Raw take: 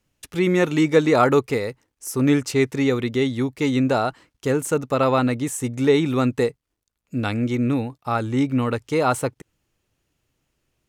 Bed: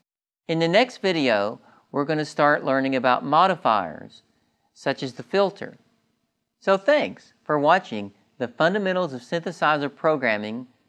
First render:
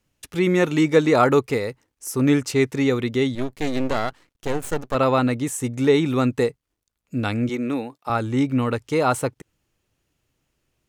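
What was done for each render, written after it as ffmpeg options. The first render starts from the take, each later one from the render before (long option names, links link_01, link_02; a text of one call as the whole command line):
ffmpeg -i in.wav -filter_complex "[0:a]asettb=1/sr,asplit=3[link_01][link_02][link_03];[link_01]atrim=end=3.354[link_04];[link_02]atrim=start=3.35:end=4.95,asetpts=PTS-STARTPTS,afade=type=in:duration=0.004:curve=qsin,afade=type=out:start_time=1.596:duration=0.004:curve=qsin,aeval=exprs='max(val(0),0)':channel_layout=same[link_05];[link_03]atrim=start=4.946[link_06];[link_04][link_05]acrossfade=duration=0.004:curve1=hsin:curve2=qsin[link_07];[link_07][link_06]acrossfade=duration=0.004:curve1=qsin:curve2=hsin,asettb=1/sr,asplit=3[link_08][link_09][link_10];[link_08]atrim=end=7.494[link_11];[link_09]atrim=start=7.49:end=8.1,asetpts=PTS-STARTPTS,afade=type=in:duration=0.004:curve=qsin,afade=type=out:start_time=0.606:duration=0.004:curve=qsin,highpass=270[link_12];[link_10]atrim=start=8.096[link_13];[link_11][link_12]acrossfade=duration=0.004:curve1=hsin:curve2=qsin[link_14];[link_14][link_13]acrossfade=duration=0.004:curve1=qsin:curve2=hsin" out.wav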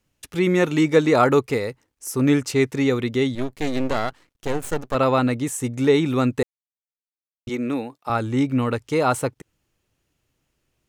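ffmpeg -i in.wav -filter_complex "[0:a]asplit=3[link_01][link_02][link_03];[link_01]atrim=end=6.43,asetpts=PTS-STARTPTS,afade=type=out:start_time=6.426:duration=0.004:curve=hsin[link_04];[link_02]atrim=start=6.43:end=7.47,asetpts=PTS-STARTPTS,volume=0[link_05];[link_03]atrim=start=7.47,asetpts=PTS-STARTPTS,afade=type=in:duration=0.004:curve=hsin[link_06];[link_04][link_05][link_06]concat=n=3:v=0:a=1" out.wav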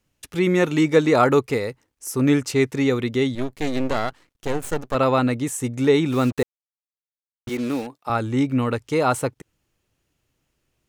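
ffmpeg -i in.wav -filter_complex "[0:a]asettb=1/sr,asplit=3[link_01][link_02][link_03];[link_01]atrim=end=6.124[link_04];[link_02]atrim=start=6.12:end=7.87,asetpts=PTS-STARTPTS,afade=type=in:duration=0.004:curve=qsin,afade=type=out:start_time=1.746:duration=0.004:curve=qsin,acrusher=bits=5:mix=0:aa=0.5[link_05];[link_03]atrim=start=7.866[link_06];[link_04][link_05]acrossfade=duration=0.004:curve1=hsin:curve2=qsin[link_07];[link_07][link_06]acrossfade=duration=0.004:curve1=qsin:curve2=hsin" out.wav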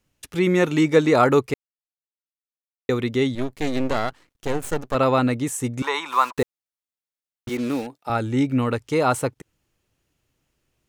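ffmpeg -i in.wav -filter_complex "[0:a]asettb=1/sr,asplit=3[link_01][link_02][link_03];[link_01]atrim=end=5.824[link_04];[link_02]atrim=start=5.82:end=6.37,asetpts=PTS-STARTPTS,afade=type=in:duration=0.004:curve=qsin,afade=type=out:start_time=0.546:duration=0.004:curve=qsin,highpass=frequency=1000:width_type=q:width=9.1[link_05];[link_03]atrim=start=6.366[link_06];[link_04][link_05]acrossfade=duration=0.004:curve1=hsin:curve2=qsin[link_07];[link_07][link_06]acrossfade=duration=0.004:curve1=qsin:curve2=hsin,asettb=1/sr,asplit=3[link_08][link_09][link_10];[link_08]atrim=end=7.814[link_11];[link_09]atrim=start=7.81:end=8.58,asetpts=PTS-STARTPTS,afade=type=in:duration=0.004:curve=qsin,afade=type=out:start_time=0.766:duration=0.004:curve=qsin,bandreject=frequency=1100:width=5.4[link_12];[link_10]atrim=start=8.576[link_13];[link_11][link_12]acrossfade=duration=0.004:curve1=hsin:curve2=qsin[link_14];[link_14][link_13]acrossfade=duration=0.004:curve1=qsin:curve2=hsin,asplit=3[link_15][link_16][link_17];[link_15]atrim=end=1.54,asetpts=PTS-STARTPTS,afade=type=out:start_time=1.536:duration=0.004:curve=hsin[link_18];[link_16]atrim=start=1.54:end=2.89,asetpts=PTS-STARTPTS,volume=0[link_19];[link_17]atrim=start=2.89,asetpts=PTS-STARTPTS,afade=type=in:duration=0.004:curve=hsin[link_20];[link_18][link_19][link_20]concat=n=3:v=0:a=1" out.wav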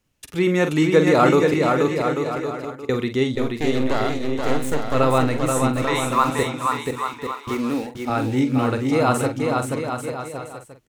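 ffmpeg -i in.wav -filter_complex "[0:a]asplit=2[link_01][link_02];[link_02]adelay=46,volume=-9dB[link_03];[link_01][link_03]amix=inputs=2:normalize=0,asplit=2[link_04][link_05];[link_05]aecho=0:1:480|840|1110|1312|1464:0.631|0.398|0.251|0.158|0.1[link_06];[link_04][link_06]amix=inputs=2:normalize=0" out.wav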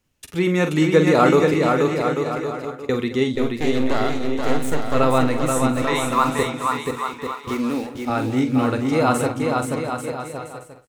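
ffmpeg -i in.wav -filter_complex "[0:a]asplit=2[link_01][link_02];[link_02]adelay=12,volume=-12.5dB[link_03];[link_01][link_03]amix=inputs=2:normalize=0,asplit=2[link_04][link_05];[link_05]adelay=215.7,volume=-15dB,highshelf=frequency=4000:gain=-4.85[link_06];[link_04][link_06]amix=inputs=2:normalize=0" out.wav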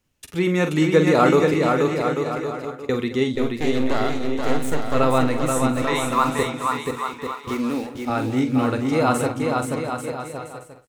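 ffmpeg -i in.wav -af "volume=-1dB" out.wav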